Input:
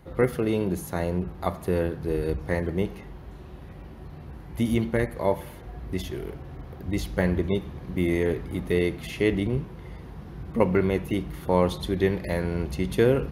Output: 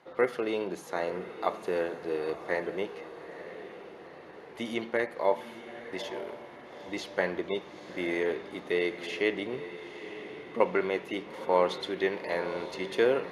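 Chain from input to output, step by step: BPF 470–5700 Hz; diffused feedback echo 0.909 s, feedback 49%, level -12 dB

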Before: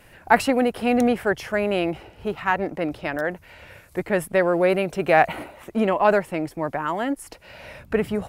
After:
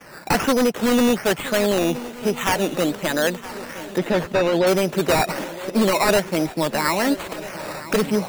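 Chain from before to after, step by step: Chebyshev high-pass 160 Hz, order 3; gate with hold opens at -47 dBFS; notch 720 Hz, Q 12; in parallel at +2.5 dB: compressor, threshold -30 dBFS, peak gain reduction 17.5 dB; on the sum: decimation with a swept rate 11×, swing 60% 1.2 Hz; wavefolder -13.5 dBFS; 3.98–4.67 air absorption 170 m; on a send: swung echo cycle 1.291 s, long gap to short 3:1, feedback 52%, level -16.5 dB; on the sum: gain +2 dB

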